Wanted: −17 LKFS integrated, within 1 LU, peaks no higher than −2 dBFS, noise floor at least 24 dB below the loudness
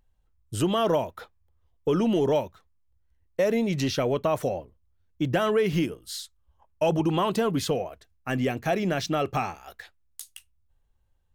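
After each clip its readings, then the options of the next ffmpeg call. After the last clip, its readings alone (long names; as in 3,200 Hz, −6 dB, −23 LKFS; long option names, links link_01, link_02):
integrated loudness −26.5 LKFS; sample peak −13.0 dBFS; target loudness −17.0 LKFS
→ -af "volume=9.5dB"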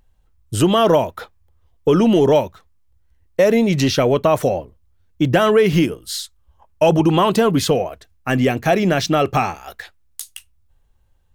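integrated loudness −17.0 LKFS; sample peak −3.5 dBFS; background noise floor −58 dBFS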